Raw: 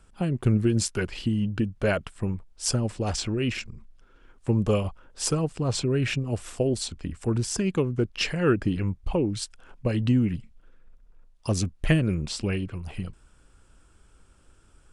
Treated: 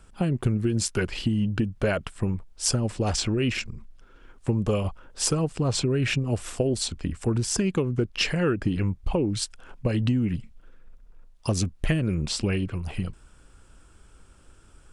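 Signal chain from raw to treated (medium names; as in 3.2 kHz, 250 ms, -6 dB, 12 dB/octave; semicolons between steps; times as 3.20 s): compression, threshold -24 dBFS, peak gain reduction 8.5 dB; trim +4 dB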